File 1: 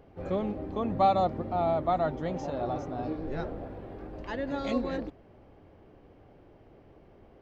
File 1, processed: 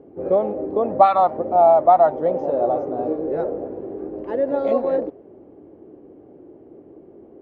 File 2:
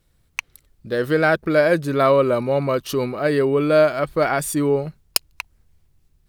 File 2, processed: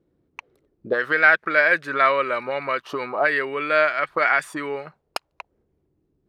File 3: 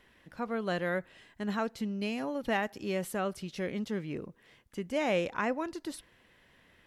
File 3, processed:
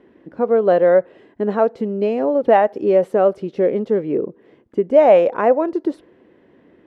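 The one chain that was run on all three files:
envelope filter 330–1,900 Hz, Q 2.4, up, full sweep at −16.5 dBFS
normalise the peak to −2 dBFS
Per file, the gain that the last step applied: +16.0, +10.0, +22.5 decibels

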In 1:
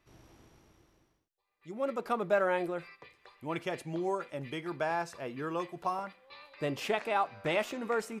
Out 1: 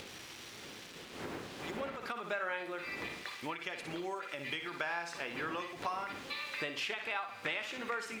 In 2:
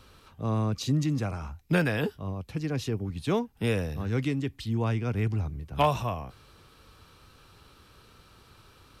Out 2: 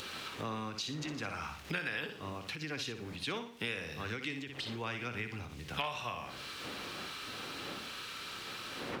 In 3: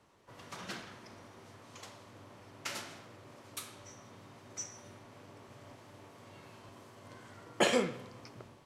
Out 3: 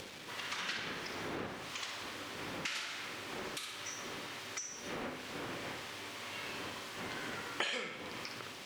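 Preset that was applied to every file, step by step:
wind on the microphone 410 Hz −47 dBFS
notch filter 650 Hz, Q 19
hum removal 66.27 Hz, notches 3
bit reduction 10 bits
meter weighting curve D
flutter between parallel walls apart 10.1 metres, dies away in 0.38 s
downward compressor 5 to 1, threshold −43 dBFS
dynamic equaliser 1,400 Hz, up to +7 dB, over −59 dBFS, Q 0.75
upward compression, threshold −48 dBFS
every ending faded ahead of time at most 110 dB per second
level +3 dB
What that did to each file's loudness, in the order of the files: −5.5, −10.0, −3.0 LU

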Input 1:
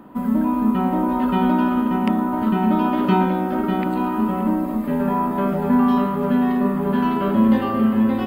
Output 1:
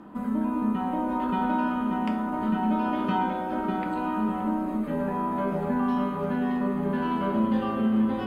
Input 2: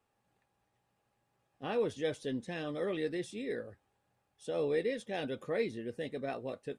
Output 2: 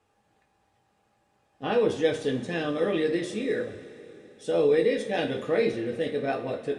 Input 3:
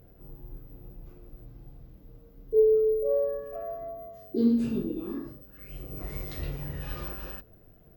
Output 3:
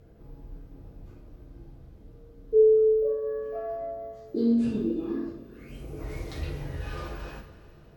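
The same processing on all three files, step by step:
low-pass filter 9,300 Hz 12 dB per octave
in parallel at +2 dB: downward compressor, threshold −26 dBFS
on the sum: coupled-rooms reverb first 0.33 s, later 3.7 s, from −18 dB, DRR 2 dB
loudness normalisation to −27 LKFS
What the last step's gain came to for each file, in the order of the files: −11.5, 0.0, −7.0 decibels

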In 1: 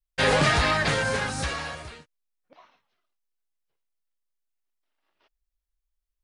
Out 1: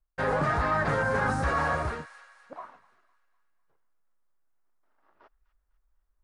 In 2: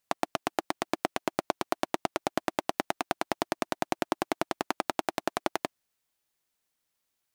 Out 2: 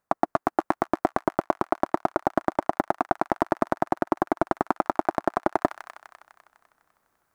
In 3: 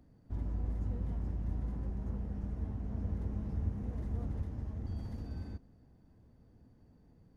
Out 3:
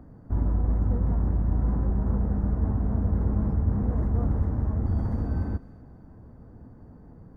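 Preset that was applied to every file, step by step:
high shelf with overshoot 2,000 Hz −13.5 dB, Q 1.5
delay with a high-pass on its return 251 ms, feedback 46%, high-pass 1,900 Hz, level −14 dB
reversed playback
downward compressor 20 to 1, threshold −33 dBFS
reversed playback
loudness normalisation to −27 LKFS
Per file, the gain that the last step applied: +10.0, +15.5, +14.0 decibels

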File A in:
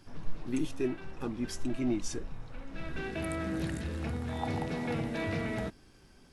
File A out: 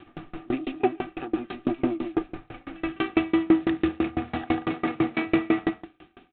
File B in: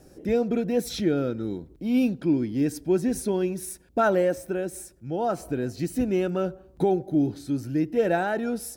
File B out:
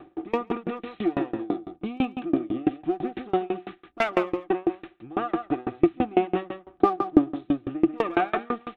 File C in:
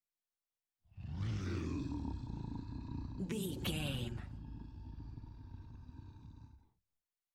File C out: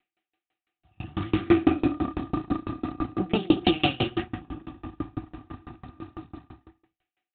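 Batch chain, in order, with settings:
lower of the sound and its delayed copy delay 0.44 ms
spectral tilt +2.5 dB per octave
notch filter 2,100 Hz, Q 26
in parallel at +2 dB: downward compressor 8 to 1, threshold −37 dBFS
on the sum: downsampling to 8,000 Hz
tuned comb filter 760 Hz, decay 0.43 s, mix 30%
hard clipping −19 dBFS
hollow resonant body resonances 330/740/1,200 Hz, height 18 dB, ringing for 90 ms
on a send: single-tap delay 144 ms −9 dB
on the sum: tremolo with a ramp in dB decaying 6 Hz, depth 30 dB
loudness normalisation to −27 LKFS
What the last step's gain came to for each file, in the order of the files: +10.0, +5.0, +19.0 decibels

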